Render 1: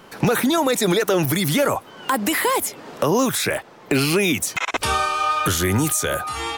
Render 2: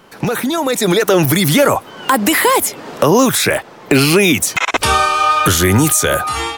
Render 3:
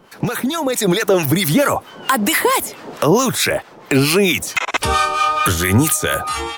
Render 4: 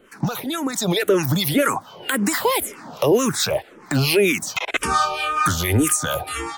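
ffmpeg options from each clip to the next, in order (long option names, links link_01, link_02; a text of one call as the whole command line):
ffmpeg -i in.wav -af "dynaudnorm=framelen=580:gausssize=3:maxgain=11.5dB" out.wav
ffmpeg -i in.wav -filter_complex "[0:a]acrossover=split=920[link_01][link_02];[link_01]aeval=exprs='val(0)*(1-0.7/2+0.7/2*cos(2*PI*4.5*n/s))':channel_layout=same[link_03];[link_02]aeval=exprs='val(0)*(1-0.7/2-0.7/2*cos(2*PI*4.5*n/s))':channel_layout=same[link_04];[link_03][link_04]amix=inputs=2:normalize=0" out.wav
ffmpeg -i in.wav -filter_complex "[0:a]asplit=2[link_01][link_02];[link_02]afreqshift=-1.9[link_03];[link_01][link_03]amix=inputs=2:normalize=1,volume=-1dB" out.wav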